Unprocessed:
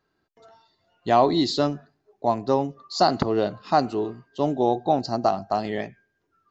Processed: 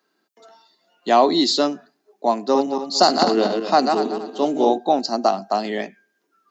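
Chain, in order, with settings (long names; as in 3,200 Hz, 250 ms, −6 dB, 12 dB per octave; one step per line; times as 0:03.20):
0:02.43–0:04.78: feedback delay that plays each chunk backwards 117 ms, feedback 51%, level −4.5 dB
Butterworth high-pass 190 Hz 48 dB per octave
high-shelf EQ 4,100 Hz +9 dB
level +3 dB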